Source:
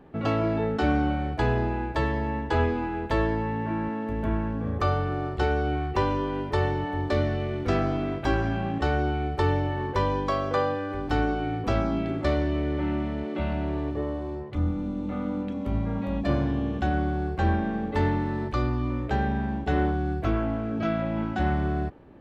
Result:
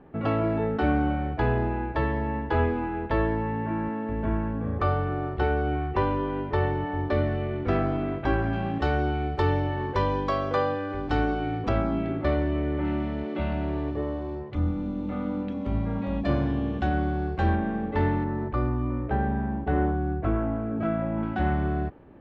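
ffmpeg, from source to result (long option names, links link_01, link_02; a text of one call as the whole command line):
ffmpeg -i in.wav -af "asetnsamples=nb_out_samples=441:pad=0,asendcmd='8.53 lowpass f 5000;11.69 lowpass f 2700;12.85 lowpass f 4800;17.55 lowpass f 2800;18.24 lowpass f 1600;21.23 lowpass f 3000',lowpass=2600" out.wav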